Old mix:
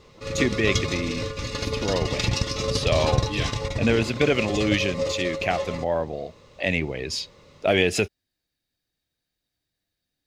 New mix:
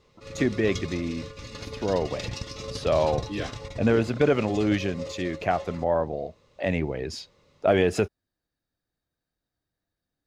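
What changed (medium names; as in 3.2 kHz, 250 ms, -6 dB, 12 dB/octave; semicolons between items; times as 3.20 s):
speech: add resonant high shelf 1.8 kHz -8 dB, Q 1.5; background -10.0 dB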